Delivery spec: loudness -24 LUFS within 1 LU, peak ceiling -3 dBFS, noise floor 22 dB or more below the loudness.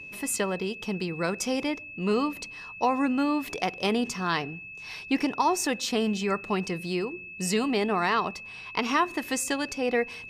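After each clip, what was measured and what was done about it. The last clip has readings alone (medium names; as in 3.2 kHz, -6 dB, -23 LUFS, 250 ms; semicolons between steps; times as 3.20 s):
steady tone 2.6 kHz; tone level -40 dBFS; loudness -28.0 LUFS; peak level -10.5 dBFS; loudness target -24.0 LUFS
-> band-stop 2.6 kHz, Q 30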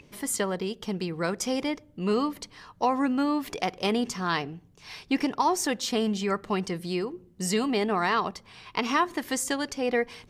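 steady tone not found; loudness -28.0 LUFS; peak level -10.5 dBFS; loudness target -24.0 LUFS
-> trim +4 dB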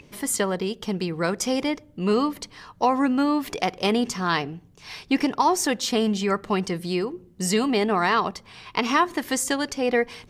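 loudness -24.0 LUFS; peak level -6.5 dBFS; noise floor -53 dBFS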